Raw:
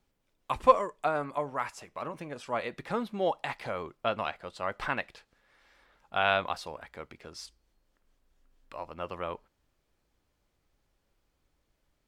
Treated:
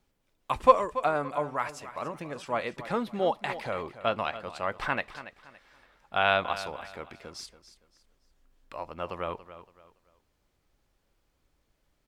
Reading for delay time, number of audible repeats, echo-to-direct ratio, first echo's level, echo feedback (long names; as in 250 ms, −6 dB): 283 ms, 3, −13.5 dB, −14.0 dB, 31%